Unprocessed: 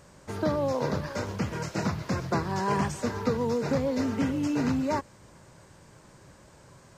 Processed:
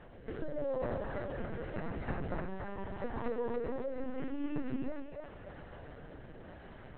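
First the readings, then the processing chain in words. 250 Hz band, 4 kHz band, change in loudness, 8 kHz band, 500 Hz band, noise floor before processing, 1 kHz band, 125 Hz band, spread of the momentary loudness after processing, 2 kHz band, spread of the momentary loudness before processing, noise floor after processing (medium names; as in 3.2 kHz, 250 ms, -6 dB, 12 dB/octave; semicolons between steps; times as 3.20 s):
-11.5 dB, -18.0 dB, -11.0 dB, under -35 dB, -8.0 dB, -55 dBFS, -12.5 dB, -12.0 dB, 14 LU, -10.0 dB, 5 LU, -51 dBFS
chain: high-pass 80 Hz 6 dB/octave; hum notches 50/100/150/200/250/300/350/400/450 Hz; compression 5:1, threshold -41 dBFS, peak gain reduction 16.5 dB; rotary cabinet horn 0.85 Hz; distance through air 220 m; comb of notches 1.2 kHz; two-band feedback delay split 520 Hz, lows 97 ms, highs 286 ms, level -4 dB; LPC vocoder at 8 kHz pitch kept; trim +7.5 dB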